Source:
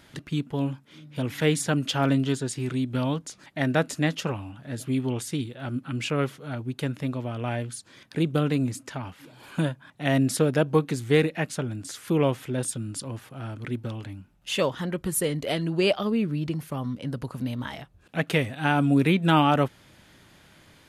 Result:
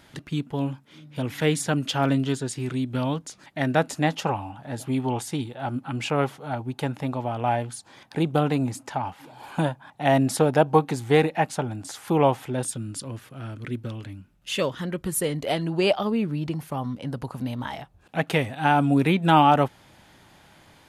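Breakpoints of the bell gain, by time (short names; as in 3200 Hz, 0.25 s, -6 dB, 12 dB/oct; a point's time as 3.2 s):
bell 820 Hz 0.6 oct
3.63 s +3.5 dB
4.21 s +15 dB
12.34 s +15 dB
12.76 s +3.5 dB
13.21 s -4 dB
14.79 s -4 dB
15.51 s +8 dB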